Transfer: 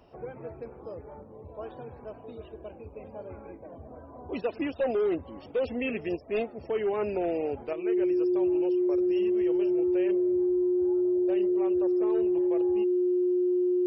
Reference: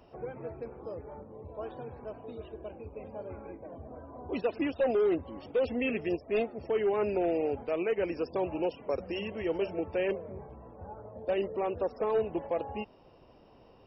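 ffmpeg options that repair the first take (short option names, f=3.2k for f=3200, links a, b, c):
-af "bandreject=f=360:w=30,asetnsamples=n=441:p=0,asendcmd='7.73 volume volume 7dB',volume=0dB"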